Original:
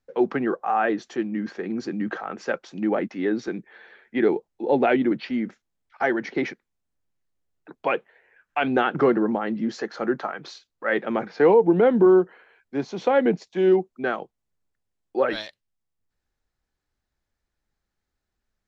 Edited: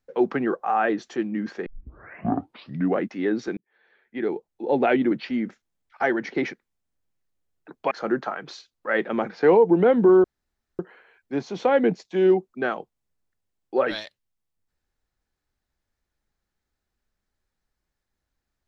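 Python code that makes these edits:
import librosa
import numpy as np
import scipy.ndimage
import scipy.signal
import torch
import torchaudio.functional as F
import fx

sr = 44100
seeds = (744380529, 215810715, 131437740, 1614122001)

y = fx.edit(x, sr, fx.tape_start(start_s=1.66, length_s=1.39),
    fx.fade_in_span(start_s=3.57, length_s=1.39),
    fx.cut(start_s=7.91, length_s=1.97),
    fx.insert_room_tone(at_s=12.21, length_s=0.55), tone=tone)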